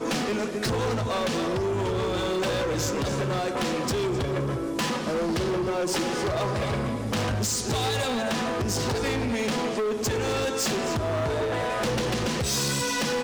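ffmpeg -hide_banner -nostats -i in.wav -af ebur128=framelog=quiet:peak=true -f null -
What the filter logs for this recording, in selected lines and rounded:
Integrated loudness:
  I:         -26.6 LUFS
  Threshold: -36.6 LUFS
Loudness range:
  LRA:         0.8 LU
  Threshold: -46.7 LUFS
  LRA low:   -27.0 LUFS
  LRA high:  -26.3 LUFS
True peak:
  Peak:      -20.5 dBFS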